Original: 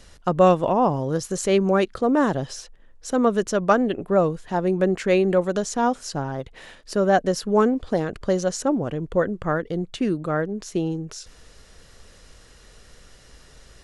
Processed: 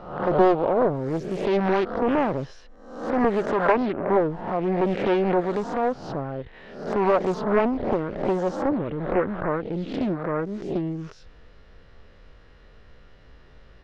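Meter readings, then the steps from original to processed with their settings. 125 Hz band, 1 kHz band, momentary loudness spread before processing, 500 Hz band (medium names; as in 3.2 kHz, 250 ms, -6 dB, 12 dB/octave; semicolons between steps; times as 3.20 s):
-3.5 dB, -1.5 dB, 10 LU, -1.5 dB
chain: reverse spectral sustain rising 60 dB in 0.71 s; distance through air 330 m; loudspeaker Doppler distortion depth 0.66 ms; trim -2.5 dB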